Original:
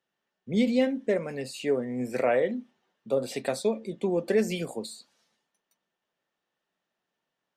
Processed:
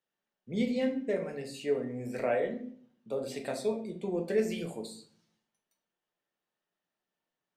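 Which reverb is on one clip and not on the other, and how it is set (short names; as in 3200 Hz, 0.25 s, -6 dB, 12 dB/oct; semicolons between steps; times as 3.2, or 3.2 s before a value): shoebox room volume 68 m³, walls mixed, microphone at 0.49 m; gain -7.5 dB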